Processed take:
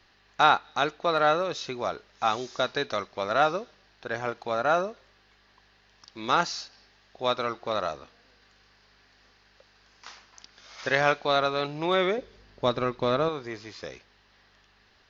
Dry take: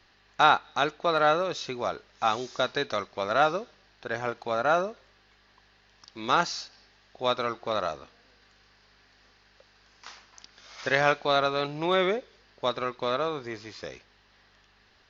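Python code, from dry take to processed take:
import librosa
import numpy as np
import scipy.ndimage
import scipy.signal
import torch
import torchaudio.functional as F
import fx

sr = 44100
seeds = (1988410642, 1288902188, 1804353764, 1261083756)

y = fx.low_shelf(x, sr, hz=360.0, db=11.0, at=(12.18, 13.29))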